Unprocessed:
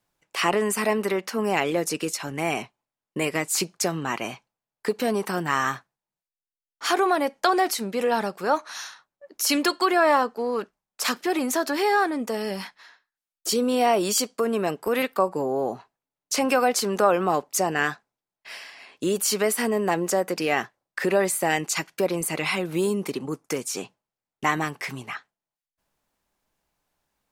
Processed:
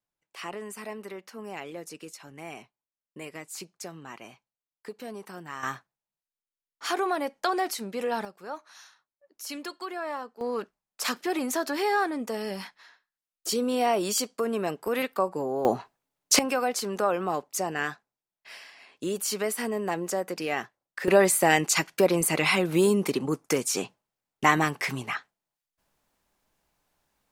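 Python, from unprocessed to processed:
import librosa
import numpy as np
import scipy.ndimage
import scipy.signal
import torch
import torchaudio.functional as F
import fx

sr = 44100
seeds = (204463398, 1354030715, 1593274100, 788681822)

y = fx.gain(x, sr, db=fx.steps((0.0, -15.0), (5.63, -6.0), (8.25, -15.0), (10.41, -4.0), (15.65, 6.0), (16.39, -6.0), (21.08, 2.5)))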